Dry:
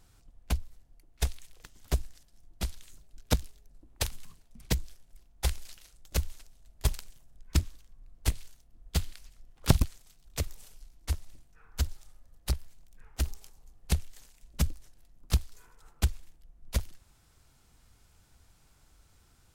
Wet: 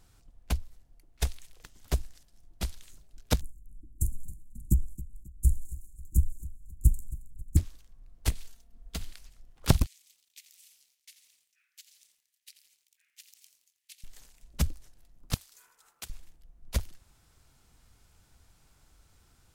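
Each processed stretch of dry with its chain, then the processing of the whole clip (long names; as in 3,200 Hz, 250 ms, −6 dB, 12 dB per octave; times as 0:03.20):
0:03.41–0:07.57: Chebyshev band-stop filter 330–7,100 Hz, order 5 + low-shelf EQ 170 Hz +8 dB + repeating echo 270 ms, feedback 40%, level −17.5 dB
0:08.32–0:09.01: comb filter 4.4 ms, depth 55% + downward compressor 5 to 1, threshold −31 dBFS
0:09.86–0:14.04: Butterworth high-pass 2,100 Hz + downward compressor 2.5 to 1, threshold −53 dBFS + feedback echo at a low word length 85 ms, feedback 55%, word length 11 bits, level −10.5 dB
0:15.34–0:16.10: high-pass filter 1,200 Hz 6 dB per octave + high-shelf EQ 7,100 Hz +5.5 dB + downward compressor 2 to 1, threshold −42 dBFS
whole clip: no processing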